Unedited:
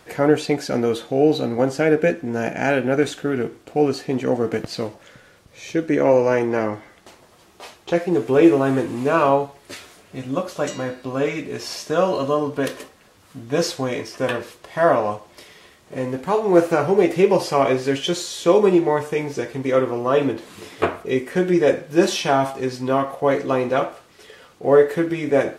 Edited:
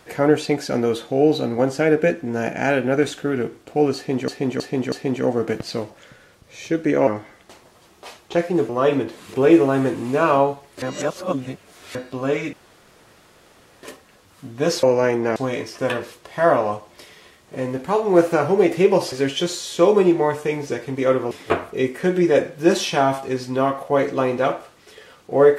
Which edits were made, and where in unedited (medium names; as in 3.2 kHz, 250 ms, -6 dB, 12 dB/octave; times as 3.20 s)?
3.96–4.28 s: loop, 4 plays
6.11–6.64 s: move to 13.75 s
9.74–10.87 s: reverse
11.45–12.75 s: room tone
17.51–17.79 s: delete
19.98–20.63 s: move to 8.26 s